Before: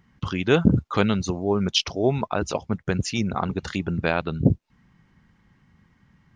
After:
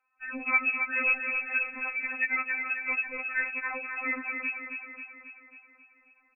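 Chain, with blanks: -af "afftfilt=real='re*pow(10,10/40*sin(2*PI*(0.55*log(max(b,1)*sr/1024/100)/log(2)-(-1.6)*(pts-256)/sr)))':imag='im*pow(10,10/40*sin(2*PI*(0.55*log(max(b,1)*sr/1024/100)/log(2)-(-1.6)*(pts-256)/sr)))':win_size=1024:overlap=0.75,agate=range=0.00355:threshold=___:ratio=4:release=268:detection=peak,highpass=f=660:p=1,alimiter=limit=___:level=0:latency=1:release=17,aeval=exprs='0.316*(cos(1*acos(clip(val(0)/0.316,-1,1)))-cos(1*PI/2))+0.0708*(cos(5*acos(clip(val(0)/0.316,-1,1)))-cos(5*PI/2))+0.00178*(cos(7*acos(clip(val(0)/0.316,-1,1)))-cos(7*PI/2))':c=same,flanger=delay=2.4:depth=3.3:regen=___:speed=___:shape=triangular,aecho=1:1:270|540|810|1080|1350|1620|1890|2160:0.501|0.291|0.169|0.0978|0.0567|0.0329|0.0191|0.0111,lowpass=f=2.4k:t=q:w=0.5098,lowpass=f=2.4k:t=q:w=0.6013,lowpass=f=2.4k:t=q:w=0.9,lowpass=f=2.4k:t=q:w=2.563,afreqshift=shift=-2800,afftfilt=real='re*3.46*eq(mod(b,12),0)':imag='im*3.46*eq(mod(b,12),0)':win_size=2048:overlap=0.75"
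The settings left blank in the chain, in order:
0.002, 0.316, -56, 0.92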